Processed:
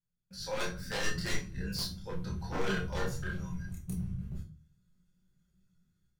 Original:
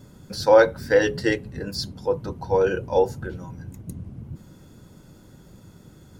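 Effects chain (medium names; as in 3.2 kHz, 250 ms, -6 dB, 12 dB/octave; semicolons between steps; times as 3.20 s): gate -38 dBFS, range -26 dB; high-order bell 500 Hz -12 dB 2.5 oct; level rider gain up to 15 dB; wavefolder -13 dBFS; chorus voices 6, 0.77 Hz, delay 28 ms, depth 3.4 ms; feedback comb 180 Hz, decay 0.29 s, harmonics all, mix 70%; on a send: reverberation RT60 0.35 s, pre-delay 5 ms, DRR 2 dB; on the sum: trim -6 dB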